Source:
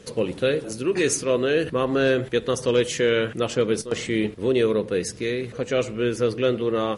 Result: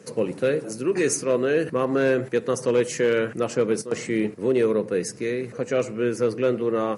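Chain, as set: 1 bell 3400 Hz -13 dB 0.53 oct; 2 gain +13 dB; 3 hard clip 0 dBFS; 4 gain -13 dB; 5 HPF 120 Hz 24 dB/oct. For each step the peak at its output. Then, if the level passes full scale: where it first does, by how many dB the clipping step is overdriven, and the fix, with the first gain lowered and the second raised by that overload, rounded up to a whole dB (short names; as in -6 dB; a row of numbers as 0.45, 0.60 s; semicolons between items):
-9.5, +3.5, 0.0, -13.0, -9.0 dBFS; step 2, 3.5 dB; step 2 +9 dB, step 4 -9 dB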